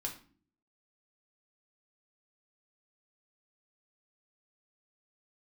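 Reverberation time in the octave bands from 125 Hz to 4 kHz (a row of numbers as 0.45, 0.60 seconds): 0.75, 0.75, 0.50, 0.40, 0.35, 0.35 seconds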